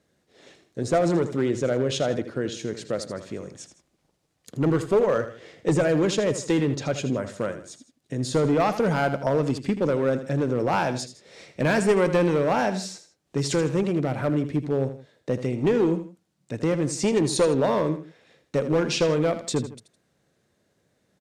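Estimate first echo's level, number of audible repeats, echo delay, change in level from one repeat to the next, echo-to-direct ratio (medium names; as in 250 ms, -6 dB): -11.5 dB, 2, 80 ms, -8.0 dB, -11.0 dB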